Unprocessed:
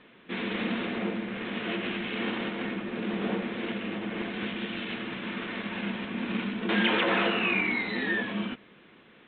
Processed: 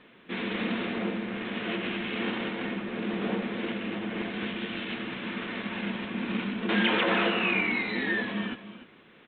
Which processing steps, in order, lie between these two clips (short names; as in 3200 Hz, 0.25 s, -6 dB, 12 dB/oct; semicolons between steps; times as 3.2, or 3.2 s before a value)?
echo 0.294 s -13 dB